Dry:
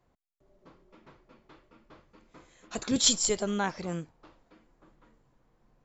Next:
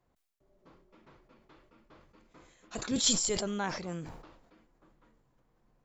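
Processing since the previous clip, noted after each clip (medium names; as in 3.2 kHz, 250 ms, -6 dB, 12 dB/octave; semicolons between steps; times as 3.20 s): decay stretcher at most 54 dB/s; trim -4.5 dB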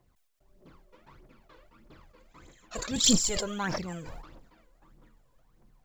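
phaser 1.6 Hz, delay 2.1 ms, feedback 67%; companded quantiser 8-bit; trim +1 dB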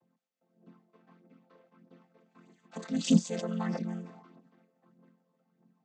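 vocoder on a held chord major triad, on F3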